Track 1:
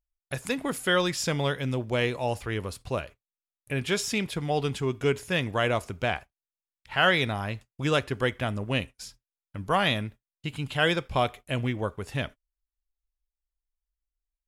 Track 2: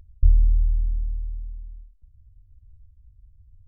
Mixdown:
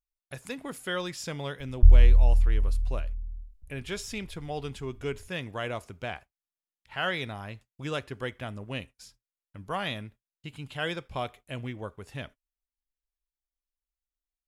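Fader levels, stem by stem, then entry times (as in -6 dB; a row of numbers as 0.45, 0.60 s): -8.0, +1.5 dB; 0.00, 1.60 s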